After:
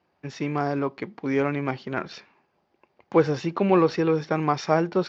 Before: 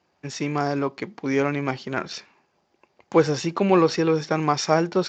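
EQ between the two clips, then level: distance through air 170 m; -1.0 dB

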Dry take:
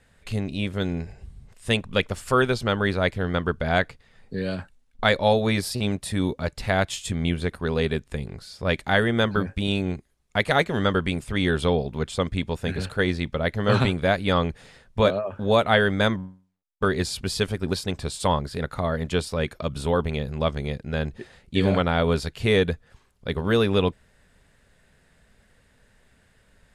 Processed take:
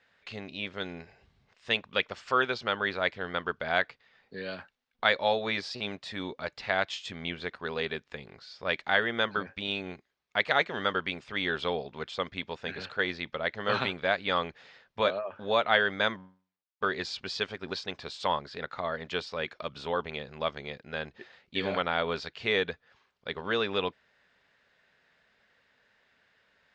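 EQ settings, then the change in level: high-pass 1.1 kHz 6 dB/octave; low-pass 6.2 kHz 24 dB/octave; distance through air 110 m; 0.0 dB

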